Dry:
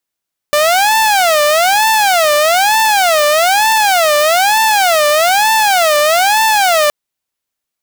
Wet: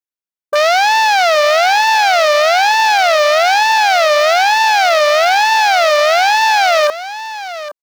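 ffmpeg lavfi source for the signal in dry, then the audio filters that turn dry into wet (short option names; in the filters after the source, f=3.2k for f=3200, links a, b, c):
-f lavfi -i "aevalsrc='0.501*(2*mod((738.5*t-147.5/(2*PI*1.1)*sin(2*PI*1.1*t)),1)-1)':d=6.37:s=44100"
-af "afwtdn=0.112,aecho=1:1:814:0.211"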